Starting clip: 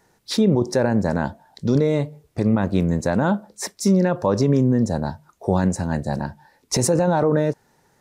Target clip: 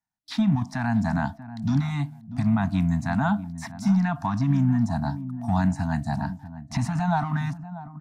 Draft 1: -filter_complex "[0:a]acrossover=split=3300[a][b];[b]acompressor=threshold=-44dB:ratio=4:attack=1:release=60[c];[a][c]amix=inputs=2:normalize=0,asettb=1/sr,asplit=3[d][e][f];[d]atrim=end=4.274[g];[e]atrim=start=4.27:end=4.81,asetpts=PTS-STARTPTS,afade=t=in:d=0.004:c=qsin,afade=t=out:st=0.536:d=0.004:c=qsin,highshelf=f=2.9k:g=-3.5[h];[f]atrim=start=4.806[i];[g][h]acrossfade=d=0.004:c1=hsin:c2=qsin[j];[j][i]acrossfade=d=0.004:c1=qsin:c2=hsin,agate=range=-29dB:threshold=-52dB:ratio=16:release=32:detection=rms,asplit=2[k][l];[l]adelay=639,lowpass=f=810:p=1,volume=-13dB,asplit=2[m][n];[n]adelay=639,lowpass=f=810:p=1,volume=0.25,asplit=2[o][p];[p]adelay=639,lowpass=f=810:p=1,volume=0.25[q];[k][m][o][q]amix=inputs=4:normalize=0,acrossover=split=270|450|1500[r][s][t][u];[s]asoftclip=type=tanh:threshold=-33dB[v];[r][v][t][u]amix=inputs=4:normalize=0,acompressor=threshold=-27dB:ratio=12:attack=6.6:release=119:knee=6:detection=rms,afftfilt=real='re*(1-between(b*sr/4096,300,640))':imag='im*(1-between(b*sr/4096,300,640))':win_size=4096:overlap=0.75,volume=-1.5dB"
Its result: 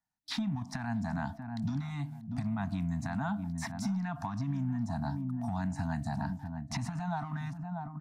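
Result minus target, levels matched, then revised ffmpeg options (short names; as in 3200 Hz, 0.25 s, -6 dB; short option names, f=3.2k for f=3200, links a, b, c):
compressor: peak gain reduction +13.5 dB
-filter_complex "[0:a]acrossover=split=3300[a][b];[b]acompressor=threshold=-44dB:ratio=4:attack=1:release=60[c];[a][c]amix=inputs=2:normalize=0,asettb=1/sr,asplit=3[d][e][f];[d]atrim=end=4.274[g];[e]atrim=start=4.27:end=4.81,asetpts=PTS-STARTPTS,afade=t=in:d=0.004:c=qsin,afade=t=out:st=0.536:d=0.004:c=qsin,highshelf=f=2.9k:g=-3.5[h];[f]atrim=start=4.806[i];[g][h]acrossfade=d=0.004:c1=hsin:c2=qsin[j];[j][i]acrossfade=d=0.004:c1=qsin:c2=hsin,agate=range=-29dB:threshold=-52dB:ratio=16:release=32:detection=rms,asplit=2[k][l];[l]adelay=639,lowpass=f=810:p=1,volume=-13dB,asplit=2[m][n];[n]adelay=639,lowpass=f=810:p=1,volume=0.25,asplit=2[o][p];[p]adelay=639,lowpass=f=810:p=1,volume=0.25[q];[k][m][o][q]amix=inputs=4:normalize=0,acrossover=split=270|450|1500[r][s][t][u];[s]asoftclip=type=tanh:threshold=-33dB[v];[r][v][t][u]amix=inputs=4:normalize=0,afftfilt=real='re*(1-between(b*sr/4096,300,640))':imag='im*(1-between(b*sr/4096,300,640))':win_size=4096:overlap=0.75,volume=-1.5dB"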